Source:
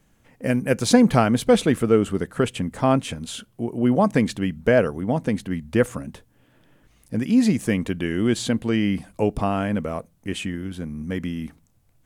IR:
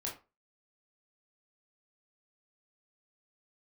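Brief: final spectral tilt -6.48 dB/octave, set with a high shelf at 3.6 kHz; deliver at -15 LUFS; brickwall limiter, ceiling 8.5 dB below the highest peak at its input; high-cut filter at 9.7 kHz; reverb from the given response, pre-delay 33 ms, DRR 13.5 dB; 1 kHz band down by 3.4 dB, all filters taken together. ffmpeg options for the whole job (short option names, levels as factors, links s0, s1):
-filter_complex "[0:a]lowpass=9700,equalizer=f=1000:t=o:g=-4.5,highshelf=f=3600:g=-5.5,alimiter=limit=0.266:level=0:latency=1,asplit=2[s0][s1];[1:a]atrim=start_sample=2205,adelay=33[s2];[s1][s2]afir=irnorm=-1:irlink=0,volume=0.2[s3];[s0][s3]amix=inputs=2:normalize=0,volume=2.99"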